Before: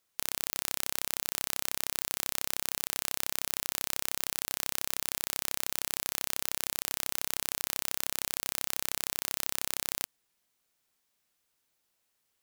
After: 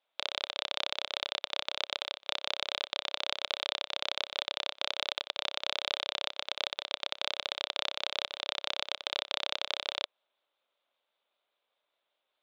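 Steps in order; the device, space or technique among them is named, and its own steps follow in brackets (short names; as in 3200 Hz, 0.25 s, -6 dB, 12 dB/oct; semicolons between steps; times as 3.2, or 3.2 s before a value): Wiener smoothing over 9 samples; voice changer toy (ring modulator with a swept carrier 1000 Hz, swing 35%, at 5.1 Hz; speaker cabinet 500–3900 Hz, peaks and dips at 580 Hz +9 dB, 1800 Hz -6 dB, 3600 Hz +10 dB); gain +6 dB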